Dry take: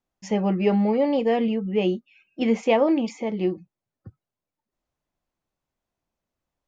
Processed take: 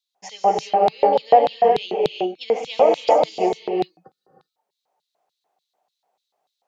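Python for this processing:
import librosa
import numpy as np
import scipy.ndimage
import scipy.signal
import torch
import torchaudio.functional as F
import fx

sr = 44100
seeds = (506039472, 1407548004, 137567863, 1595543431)

y = fx.rider(x, sr, range_db=10, speed_s=0.5)
y = fx.peak_eq(y, sr, hz=430.0, db=14.0, octaves=0.6)
y = fx.rev_gated(y, sr, seeds[0], gate_ms=410, shape='rising', drr_db=0.0)
y = fx.filter_lfo_highpass(y, sr, shape='square', hz=3.4, low_hz=740.0, high_hz=3900.0, q=7.3)
y = fx.peak_eq(y, sr, hz=160.0, db=13.0, octaves=0.84)
y = y * 10.0 ** (-1.5 / 20.0)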